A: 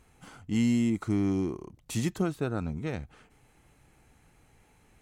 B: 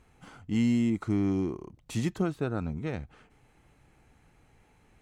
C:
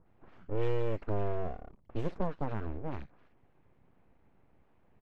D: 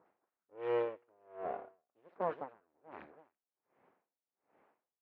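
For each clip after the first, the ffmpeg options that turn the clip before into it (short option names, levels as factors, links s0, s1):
-af "highshelf=f=6600:g=-9.5"
-filter_complex "[0:a]acrossover=split=1400|5000[s0][s1][s2];[s1]adelay=60[s3];[s2]adelay=90[s4];[s0][s3][s4]amix=inputs=3:normalize=0,aeval=exprs='abs(val(0))':c=same,adynamicsmooth=sensitivity=2:basefreq=1900,volume=0.841"
-af "highpass=470,lowpass=2100,aecho=1:1:330:0.178,aeval=exprs='val(0)*pow(10,-38*(0.5-0.5*cos(2*PI*1.3*n/s))/20)':c=same,volume=2"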